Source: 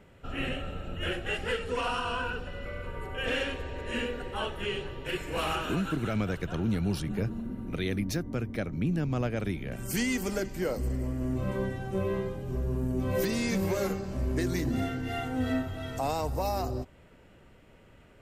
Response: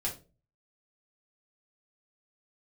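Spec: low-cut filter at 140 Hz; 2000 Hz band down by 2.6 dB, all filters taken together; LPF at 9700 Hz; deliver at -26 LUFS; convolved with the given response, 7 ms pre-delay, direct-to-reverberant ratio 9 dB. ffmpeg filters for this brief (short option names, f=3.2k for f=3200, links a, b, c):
-filter_complex "[0:a]highpass=140,lowpass=9.7k,equalizer=f=2k:t=o:g=-3.5,asplit=2[a][b];[1:a]atrim=start_sample=2205,adelay=7[c];[b][c]afir=irnorm=-1:irlink=0,volume=-12.5dB[d];[a][d]amix=inputs=2:normalize=0,volume=7.5dB"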